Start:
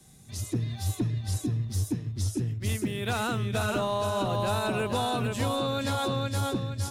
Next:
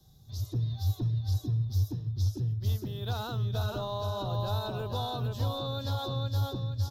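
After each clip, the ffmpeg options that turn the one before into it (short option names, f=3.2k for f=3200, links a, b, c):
-af "firequalizer=gain_entry='entry(110,0);entry(210,-13);entry(390,-9);entry(880,-7);entry(1600,-15);entry(2200,-26);entry(3600,-4);entry(5500,-6);entry(8800,-27);entry(13000,-3)':delay=0.05:min_phase=1,volume=1.5dB"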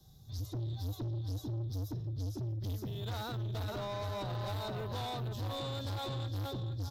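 -af "asoftclip=type=tanh:threshold=-34.5dB"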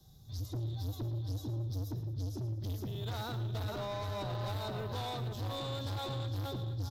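-af "aecho=1:1:112|224|336|448:0.224|0.0918|0.0376|0.0154"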